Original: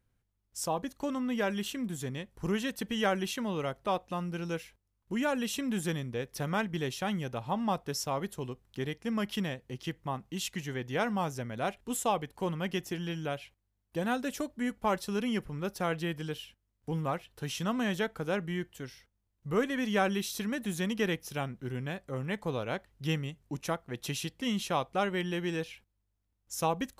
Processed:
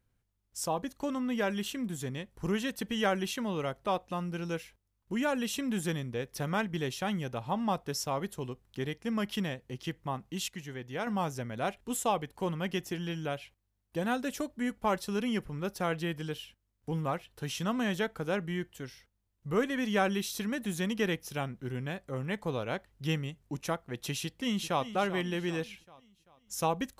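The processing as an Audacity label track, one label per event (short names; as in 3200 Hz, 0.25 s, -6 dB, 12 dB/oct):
10.480000	11.070000	gain -5 dB
24.210000	24.870000	echo throw 0.39 s, feedback 45%, level -12 dB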